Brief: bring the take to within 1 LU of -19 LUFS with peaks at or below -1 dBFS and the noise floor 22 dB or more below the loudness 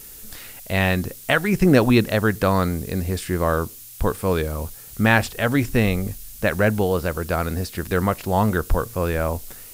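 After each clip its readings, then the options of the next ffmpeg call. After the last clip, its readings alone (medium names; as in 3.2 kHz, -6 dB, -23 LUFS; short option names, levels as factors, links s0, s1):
noise floor -41 dBFS; noise floor target -44 dBFS; loudness -21.5 LUFS; peak level -1.5 dBFS; loudness target -19.0 LUFS
-> -af "afftdn=nr=6:nf=-41"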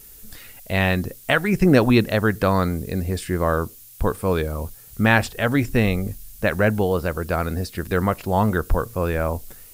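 noise floor -45 dBFS; loudness -21.5 LUFS; peak level -1.5 dBFS; loudness target -19.0 LUFS
-> -af "volume=1.33,alimiter=limit=0.891:level=0:latency=1"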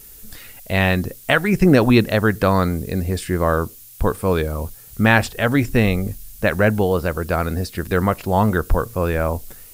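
loudness -19.0 LUFS; peak level -1.0 dBFS; noise floor -42 dBFS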